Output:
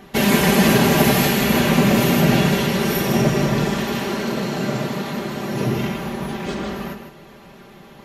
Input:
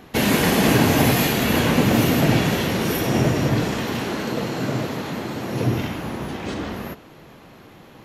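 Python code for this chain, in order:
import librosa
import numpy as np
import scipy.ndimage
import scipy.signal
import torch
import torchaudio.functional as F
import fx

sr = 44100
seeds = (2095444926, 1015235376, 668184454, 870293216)

y = x + 0.65 * np.pad(x, (int(5.1 * sr / 1000.0), 0))[:len(x)]
y = y + 10.0 ** (-8.5 / 20.0) * np.pad(y, (int(155 * sr / 1000.0), 0))[:len(y)]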